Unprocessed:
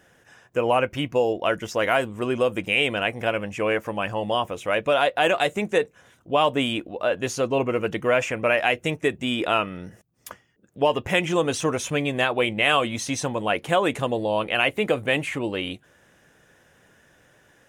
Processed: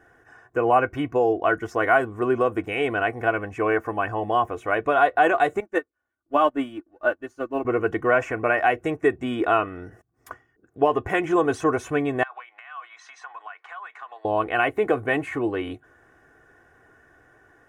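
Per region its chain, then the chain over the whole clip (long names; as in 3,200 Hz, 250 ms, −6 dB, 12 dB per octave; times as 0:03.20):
0:05.60–0:07.65: mu-law and A-law mismatch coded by mu + comb filter 3.4 ms, depth 63% + expander for the loud parts 2.5 to 1, over −39 dBFS
0:12.23–0:14.25: high-pass filter 1,000 Hz 24 dB per octave + high-frequency loss of the air 150 metres + downward compressor 10 to 1, threshold −36 dBFS
whole clip: high shelf with overshoot 2,200 Hz −11.5 dB, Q 1.5; comb filter 2.7 ms, depth 65%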